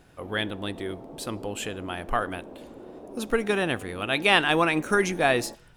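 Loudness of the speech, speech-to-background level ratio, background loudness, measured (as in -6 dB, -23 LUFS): -26.0 LUFS, 17.5 dB, -43.5 LUFS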